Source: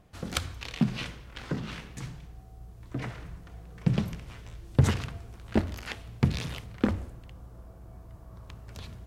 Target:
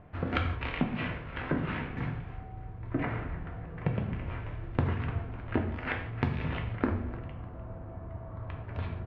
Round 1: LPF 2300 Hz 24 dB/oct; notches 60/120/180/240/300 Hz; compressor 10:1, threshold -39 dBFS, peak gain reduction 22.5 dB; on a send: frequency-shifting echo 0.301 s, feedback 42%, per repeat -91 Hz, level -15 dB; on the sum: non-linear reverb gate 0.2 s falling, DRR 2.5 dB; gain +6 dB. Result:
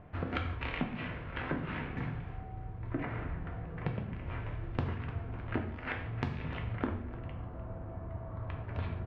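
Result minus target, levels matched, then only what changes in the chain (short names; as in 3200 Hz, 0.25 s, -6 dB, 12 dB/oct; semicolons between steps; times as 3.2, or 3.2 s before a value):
compressor: peak gain reduction +6 dB
change: compressor 10:1, threshold -32.5 dBFS, peak gain reduction 16.5 dB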